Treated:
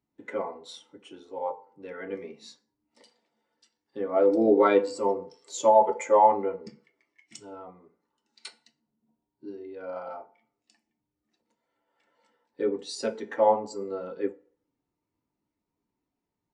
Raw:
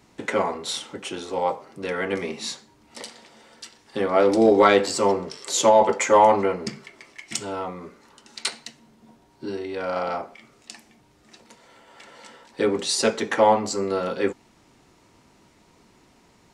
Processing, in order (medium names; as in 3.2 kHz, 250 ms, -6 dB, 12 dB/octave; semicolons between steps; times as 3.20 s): FDN reverb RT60 0.77 s, low-frequency decay 0.8×, high-frequency decay 0.65×, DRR 10 dB; spectral contrast expander 1.5:1; trim -3.5 dB